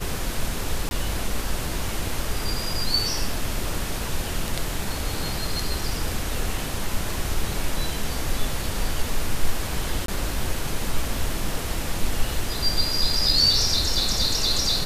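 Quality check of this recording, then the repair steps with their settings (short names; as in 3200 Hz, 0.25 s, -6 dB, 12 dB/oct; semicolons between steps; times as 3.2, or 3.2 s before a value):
0.89–0.91 gap 21 ms
10.06–10.08 gap 23 ms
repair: interpolate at 0.89, 21 ms; interpolate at 10.06, 23 ms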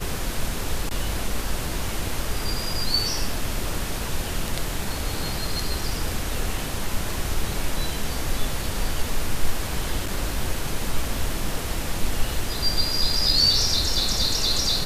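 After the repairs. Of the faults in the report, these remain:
none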